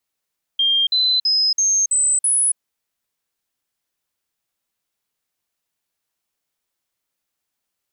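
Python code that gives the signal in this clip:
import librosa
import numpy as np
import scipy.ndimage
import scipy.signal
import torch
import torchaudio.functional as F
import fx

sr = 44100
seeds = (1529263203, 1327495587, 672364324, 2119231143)

y = fx.stepped_sweep(sr, from_hz=3200.0, direction='up', per_octave=3, tones=6, dwell_s=0.28, gap_s=0.05, level_db=-14.0)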